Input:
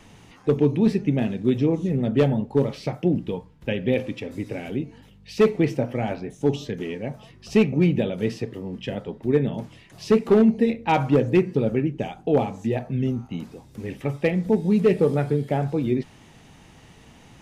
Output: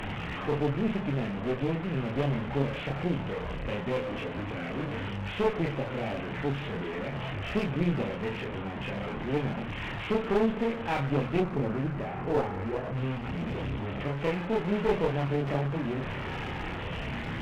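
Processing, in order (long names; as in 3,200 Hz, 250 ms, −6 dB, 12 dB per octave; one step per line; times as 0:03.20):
linear delta modulator 16 kbit/s, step −22.5 dBFS
0:11.40–0:12.96: low-pass filter 1,900 Hz 12 dB per octave
multi-voice chorus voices 4, 0.25 Hz, delay 30 ms, depth 1.2 ms
asymmetric clip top −29 dBFS
level −3 dB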